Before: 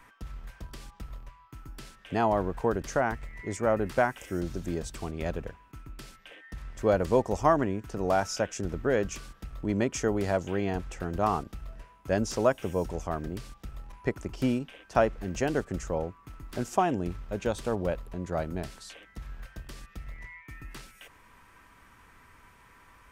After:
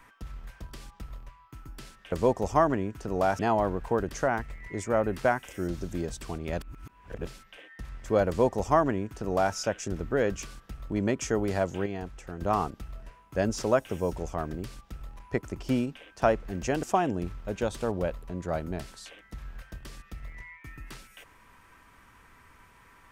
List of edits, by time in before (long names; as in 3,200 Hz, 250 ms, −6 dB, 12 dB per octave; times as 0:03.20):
0:05.34–0:06.00: reverse
0:07.01–0:08.28: duplicate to 0:02.12
0:10.59–0:11.14: clip gain −5.5 dB
0:15.56–0:16.67: remove